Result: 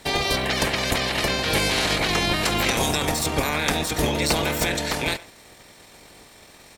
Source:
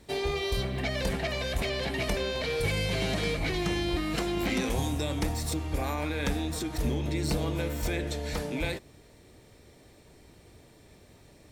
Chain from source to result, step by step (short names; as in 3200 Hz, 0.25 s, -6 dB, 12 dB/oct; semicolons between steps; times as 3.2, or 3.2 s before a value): spectral limiter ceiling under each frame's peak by 18 dB; speakerphone echo 0.18 s, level -19 dB; tempo 1.7×; gain +7.5 dB